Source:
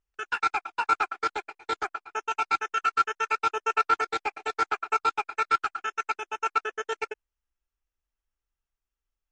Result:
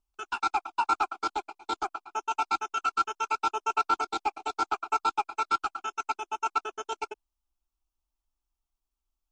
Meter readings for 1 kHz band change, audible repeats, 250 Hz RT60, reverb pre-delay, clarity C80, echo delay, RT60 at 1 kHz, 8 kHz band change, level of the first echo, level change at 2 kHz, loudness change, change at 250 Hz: −1.0 dB, no echo audible, no reverb audible, no reverb audible, no reverb audible, no echo audible, no reverb audible, +0.5 dB, no echo audible, −6.5 dB, −2.0 dB, +2.5 dB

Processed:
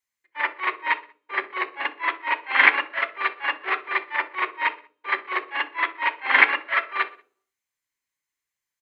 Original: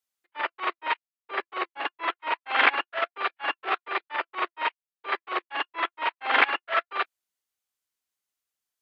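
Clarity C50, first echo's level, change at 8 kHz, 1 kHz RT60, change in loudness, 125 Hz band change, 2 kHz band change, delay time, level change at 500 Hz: 17.0 dB, −20.5 dB, can't be measured, 0.40 s, +4.5 dB, can't be measured, +6.5 dB, 63 ms, −1.5 dB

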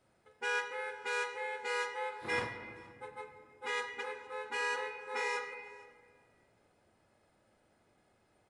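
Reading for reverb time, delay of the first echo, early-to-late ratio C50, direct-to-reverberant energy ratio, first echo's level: 1.8 s, 466 ms, 7.0 dB, 5.0 dB, −23.0 dB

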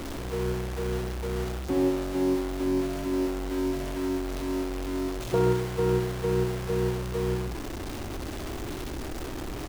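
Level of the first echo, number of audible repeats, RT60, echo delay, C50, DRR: −8.0 dB, 2, no reverb audible, 65 ms, no reverb audible, no reverb audible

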